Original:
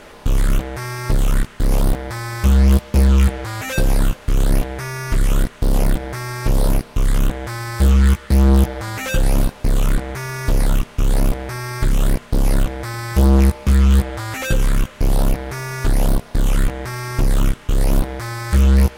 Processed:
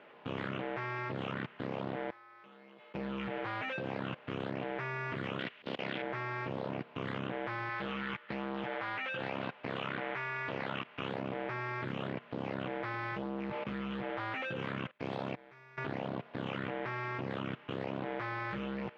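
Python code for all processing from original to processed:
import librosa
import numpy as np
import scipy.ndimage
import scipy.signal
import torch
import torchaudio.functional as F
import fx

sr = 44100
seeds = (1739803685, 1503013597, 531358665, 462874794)

y = fx.chain(x, sr, fx.highpass(hz=310.0, slope=12),
    fx.comb_fb(f0_hz=430.0, decay_s=0.76, harmonics='all', damping=0.0, mix_pct=80), at=(2.1, 2.95))
y = fx.chain(y, sr, fx.weighting(curve='D'),
    fx.auto_swell(attack_ms=130.0), at=(5.39, 6.02))
y = fx.chain(y, sr, fx.lowpass(hz=3100.0, slope=6),
    fx.tilt_shelf(db=-6.0, hz=850.0), at=(7.69, 11.1))
y = fx.chain(y, sr, fx.high_shelf(hz=2600.0, db=8.5),
    fx.notch(hz=2900.0, q=13.0),
    fx.upward_expand(threshold_db=-31.0, expansion=2.5), at=(14.91, 15.78))
y = scipy.signal.sosfilt(scipy.signal.ellip(3, 1.0, 60, [130.0, 2900.0], 'bandpass', fs=sr, output='sos'), y)
y = fx.low_shelf(y, sr, hz=180.0, db=-10.0)
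y = fx.level_steps(y, sr, step_db=19)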